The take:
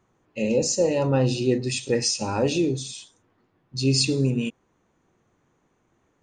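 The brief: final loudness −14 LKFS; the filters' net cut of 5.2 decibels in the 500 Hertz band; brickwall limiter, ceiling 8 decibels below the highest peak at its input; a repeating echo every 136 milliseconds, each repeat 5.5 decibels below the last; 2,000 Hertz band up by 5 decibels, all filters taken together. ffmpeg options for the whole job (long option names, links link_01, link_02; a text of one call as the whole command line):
ffmpeg -i in.wav -af "equalizer=frequency=500:width_type=o:gain=-6.5,equalizer=frequency=2000:width_type=o:gain=7.5,alimiter=limit=-17.5dB:level=0:latency=1,aecho=1:1:136|272|408|544|680|816|952:0.531|0.281|0.149|0.079|0.0419|0.0222|0.0118,volume=12dB" out.wav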